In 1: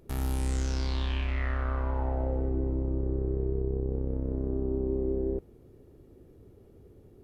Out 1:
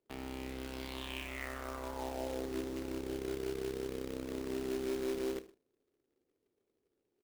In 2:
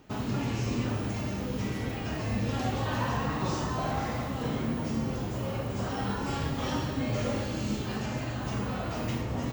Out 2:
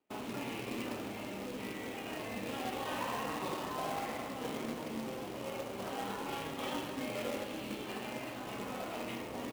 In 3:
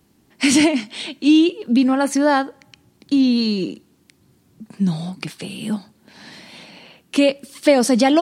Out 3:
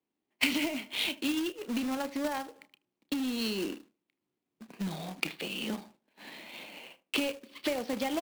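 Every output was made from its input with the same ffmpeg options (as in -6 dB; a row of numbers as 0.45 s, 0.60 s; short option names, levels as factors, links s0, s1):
-filter_complex "[0:a]lowpass=f=4300:w=0.5412,lowpass=f=4300:w=1.3066,agate=range=0.112:threshold=0.00631:ratio=16:detection=peak,acrossover=split=240 2100:gain=0.1 1 0.224[s0][s1][s2];[s0][s1][s2]amix=inputs=3:normalize=0,acompressor=threshold=0.0447:ratio=5,aexciter=amount=7.4:drive=2.1:freq=2300,adynamicsmooth=sensitivity=2.5:basefreq=2700,asplit=2[s3][s4];[s4]adelay=31,volume=0.211[s5];[s3][s5]amix=inputs=2:normalize=0,asplit=2[s6][s7];[s7]adelay=77,lowpass=f=1100:p=1,volume=0.168,asplit=2[s8][s9];[s9]adelay=77,lowpass=f=1100:p=1,volume=0.24[s10];[s6][s8][s10]amix=inputs=3:normalize=0,acrusher=bits=2:mode=log:mix=0:aa=0.000001,volume=0.596"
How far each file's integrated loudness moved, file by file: -8.5 LU, -8.0 LU, -15.0 LU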